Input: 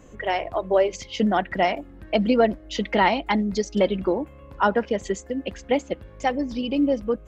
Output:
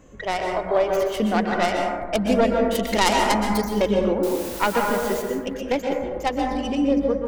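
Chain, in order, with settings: tracing distortion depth 0.23 ms; 2.75–3.62 s: treble shelf 4.8 kHz +8.5 dB; 4.23–5.22 s: word length cut 6-bit, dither triangular; plate-style reverb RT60 1.5 s, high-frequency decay 0.25×, pre-delay 110 ms, DRR 0.5 dB; trim -1.5 dB

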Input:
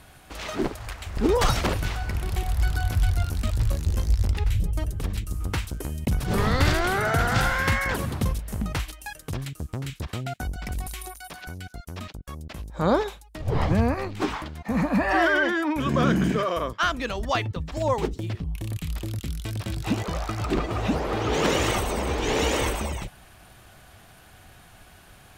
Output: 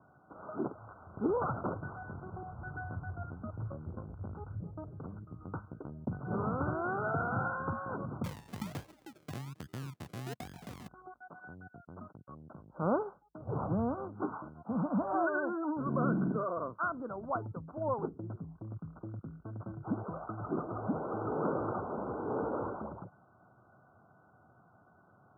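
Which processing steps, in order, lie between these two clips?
Chebyshev low-pass 1.5 kHz, order 10; 8.24–10.88 s: decimation with a swept rate 38×, swing 60% 1.2 Hz; high-pass 110 Hz 24 dB/octave; trim -8.5 dB

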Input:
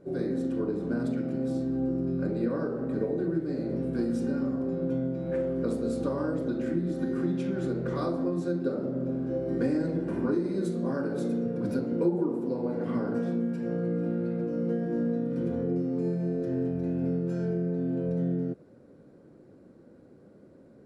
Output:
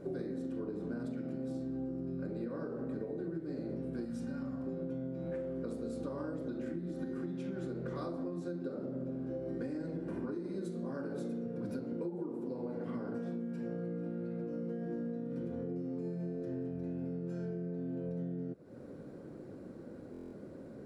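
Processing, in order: 4.05–4.67 s: peaking EQ 390 Hz -12 dB 0.75 oct; compression 6:1, threshold -43 dBFS, peak gain reduction 20.5 dB; buffer glitch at 20.12 s, samples 1024, times 8; trim +5.5 dB

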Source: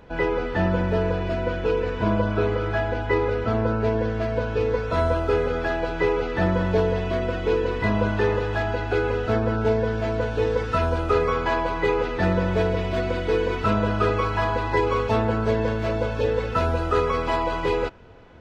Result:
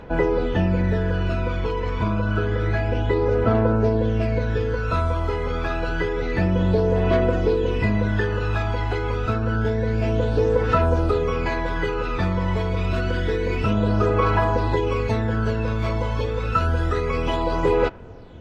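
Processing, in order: compression, threshold -22 dBFS, peak gain reduction 7 dB; phaser 0.28 Hz, delay 1 ms, feedback 53%; trim +2 dB

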